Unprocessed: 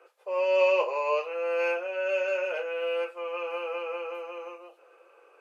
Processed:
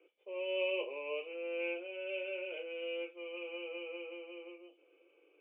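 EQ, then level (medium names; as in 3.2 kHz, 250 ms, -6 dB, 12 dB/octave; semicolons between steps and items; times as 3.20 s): cascade formant filter i; +9.5 dB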